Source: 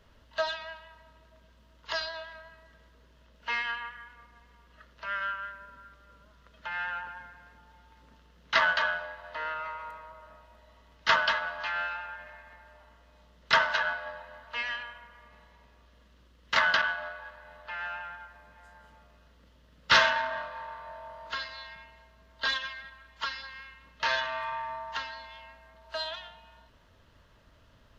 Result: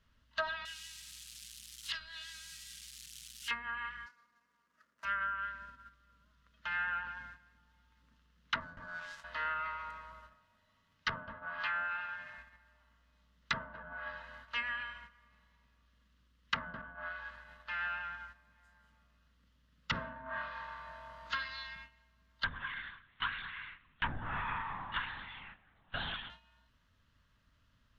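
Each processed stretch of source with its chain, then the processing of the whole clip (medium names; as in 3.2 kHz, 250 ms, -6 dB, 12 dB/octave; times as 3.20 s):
0.65–3.51 s: zero-crossing glitches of -36.5 dBFS + FFT filter 170 Hz 0 dB, 710 Hz -17 dB, 3 kHz +8 dB + flange 1.8 Hz, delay 2.5 ms, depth 5.6 ms, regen +80%
4.06–5.05 s: median filter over 15 samples + high-pass 290 Hz
8.60–9.24 s: dead-time distortion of 0.12 ms + peaking EQ 620 Hz -6.5 dB 2.3 oct + hum notches 60/120/180/240/300/360/420/480 Hz
10.30–12.38 s: peaking EQ 86 Hz +7 dB 0.46 oct + hum notches 60/120/180/240/300/360/420 Hz
22.44–26.30 s: LPC vocoder at 8 kHz whisper + feedback delay 104 ms, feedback 58%, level -21.5 dB
whole clip: gate -50 dBFS, range -10 dB; high-order bell 540 Hz -9.5 dB; low-pass that closes with the level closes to 430 Hz, closed at -25.5 dBFS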